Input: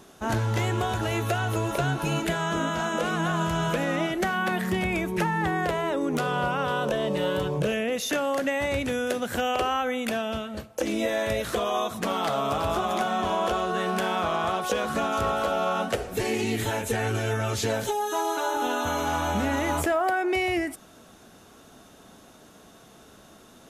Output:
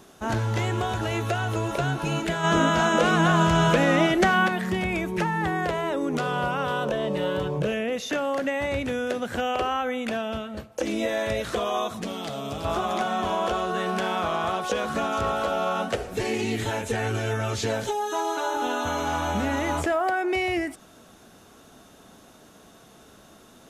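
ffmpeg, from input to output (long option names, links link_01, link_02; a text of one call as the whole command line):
ffmpeg -i in.wav -filter_complex "[0:a]asplit=3[link_01][link_02][link_03];[link_01]afade=type=out:start_time=2.43:duration=0.02[link_04];[link_02]acontrast=66,afade=type=in:start_time=2.43:duration=0.02,afade=type=out:start_time=4.46:duration=0.02[link_05];[link_03]afade=type=in:start_time=4.46:duration=0.02[link_06];[link_04][link_05][link_06]amix=inputs=3:normalize=0,asettb=1/sr,asplit=3[link_07][link_08][link_09];[link_07]atrim=end=6.844[link_10];[link_08]atrim=start=6.84:end=10.72,asetpts=PTS-STARTPTS,afade=type=in:duration=0.004:curve=qsin,afade=type=out:start_time=3.876:duration=0.004:curve=qsin,highshelf=frequency=4600:gain=-6[link_11];[link_09]atrim=start=10.716[link_12];[link_10][link_11]acrossfade=duration=0.004:curve1=hsin:curve2=qsin[link_13];[link_13][link_12]acrossfade=duration=0.004:curve1=qsin:curve2=hsin,asettb=1/sr,asplit=3[link_14][link_15][link_16];[link_14]atrim=end=12.024[link_17];[link_15]atrim=start=12.02:end=12.65,asetpts=PTS-STARTPTS,afade=type=in:duration=0.004:curve=qsin,afade=type=out:start_time=0.626:duration=0.004:curve=qsin,equalizer=frequency=1100:width=0.73:gain=-12[link_18];[link_16]atrim=start=12.646[link_19];[link_17][link_18]acrossfade=duration=0.004:curve1=hsin:curve2=qsin[link_20];[link_20][link_19]acrossfade=duration=0.004:curve1=qsin:curve2=hsin,acrossover=split=8500[link_21][link_22];[link_22]acompressor=threshold=-54dB:ratio=4:attack=1:release=60[link_23];[link_21][link_23]amix=inputs=2:normalize=0" out.wav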